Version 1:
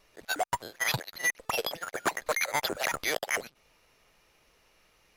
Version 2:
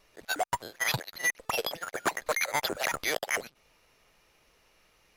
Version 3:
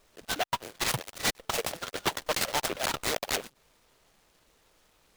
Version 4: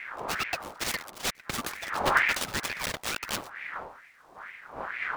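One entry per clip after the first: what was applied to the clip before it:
nothing audible
noise-modulated delay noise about 2000 Hz, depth 0.12 ms
rattling part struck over -37 dBFS, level -21 dBFS; wind noise 340 Hz -32 dBFS; ring modulator with a swept carrier 1400 Hz, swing 50%, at 2.2 Hz

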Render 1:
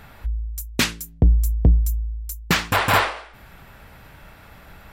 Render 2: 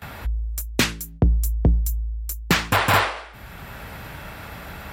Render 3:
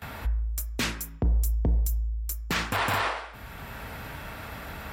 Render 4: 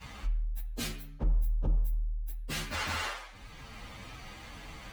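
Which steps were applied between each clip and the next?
HPF 47 Hz 12 dB/oct; gate with hold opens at -38 dBFS; three-band squash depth 40%; gain +1.5 dB
on a send at -9 dB: reverb RT60 0.60 s, pre-delay 3 ms; on the sum: limiter -14.5 dBFS, peak gain reduction 10 dB; gain -2.5 dB
inharmonic rescaling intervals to 123%; gain -3 dB

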